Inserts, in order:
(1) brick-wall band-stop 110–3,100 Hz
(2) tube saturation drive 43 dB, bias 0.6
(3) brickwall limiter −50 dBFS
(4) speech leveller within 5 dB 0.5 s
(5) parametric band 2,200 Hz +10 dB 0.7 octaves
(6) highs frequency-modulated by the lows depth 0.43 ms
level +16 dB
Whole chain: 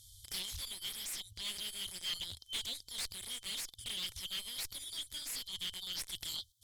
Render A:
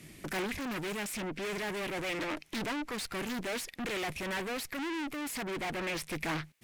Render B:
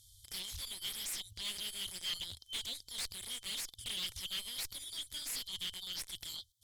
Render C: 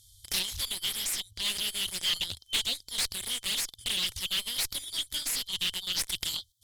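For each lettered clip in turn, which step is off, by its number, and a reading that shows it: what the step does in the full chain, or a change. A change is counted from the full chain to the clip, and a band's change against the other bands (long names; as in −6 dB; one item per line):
1, 4 kHz band −21.0 dB
4, change in momentary loudness spread +2 LU
3, average gain reduction 7.0 dB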